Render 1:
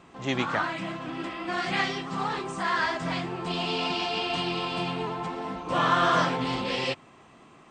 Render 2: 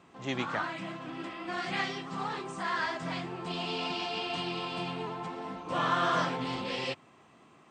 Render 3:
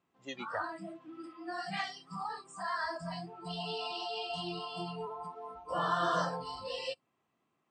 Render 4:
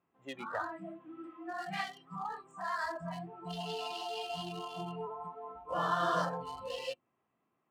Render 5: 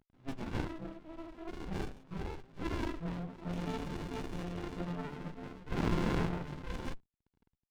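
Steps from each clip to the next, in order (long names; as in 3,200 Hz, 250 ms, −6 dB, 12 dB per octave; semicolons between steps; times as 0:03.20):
high-pass filter 75 Hz; level −5.5 dB
noise reduction from a noise print of the clip's start 21 dB; dynamic equaliser 1,900 Hz, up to −5 dB, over −46 dBFS, Q 0.79
adaptive Wiener filter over 9 samples; mains-hum notches 50/100/150/200/250/300/350 Hz
variable-slope delta modulation 32 kbit/s; downsampling to 8,000 Hz; windowed peak hold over 65 samples; level +5.5 dB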